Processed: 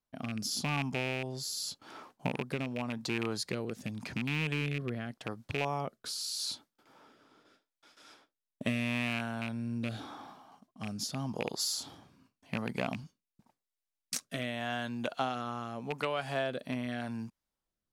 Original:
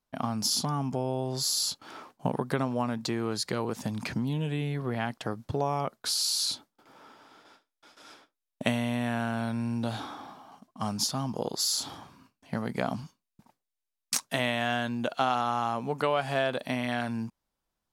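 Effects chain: rattling part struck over -30 dBFS, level -19 dBFS; rotary speaker horn 0.85 Hz; gain -3.5 dB

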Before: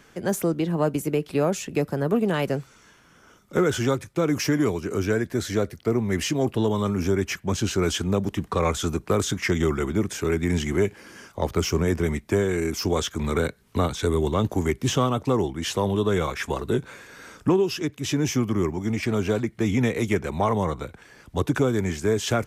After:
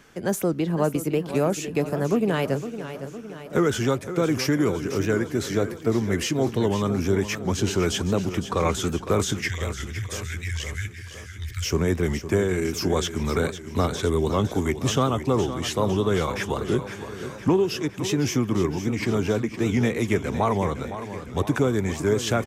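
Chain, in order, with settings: 9.39–11.7 Chebyshev band-stop 120–1600 Hz, order 4; feedback echo 0.51 s, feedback 59%, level -11.5 dB; record warp 78 rpm, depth 100 cents

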